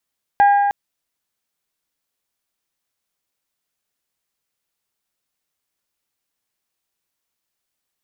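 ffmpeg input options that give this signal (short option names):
-f lavfi -i "aevalsrc='0.398*pow(10,-3*t/2.3)*sin(2*PI*810*t)+0.112*pow(10,-3*t/1.868)*sin(2*PI*1620*t)+0.0316*pow(10,-3*t/1.769)*sin(2*PI*1944*t)+0.00891*pow(10,-3*t/1.654)*sin(2*PI*2430*t)+0.00251*pow(10,-3*t/1.517)*sin(2*PI*3240*t)':d=0.31:s=44100"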